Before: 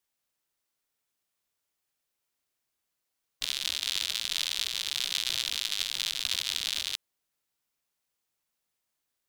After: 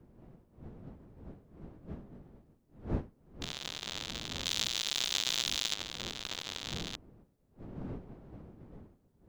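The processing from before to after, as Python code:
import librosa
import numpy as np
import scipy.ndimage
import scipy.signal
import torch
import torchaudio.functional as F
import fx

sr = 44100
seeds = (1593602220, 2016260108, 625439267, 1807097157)

y = fx.diode_clip(x, sr, knee_db=-26.5)
y = fx.dmg_wind(y, sr, seeds[0], corner_hz=260.0, level_db=-40.0)
y = fx.high_shelf(y, sr, hz=2400.0, db=11.5, at=(4.45, 5.74))
y = y * 10.0 ** (-7.0 / 20.0)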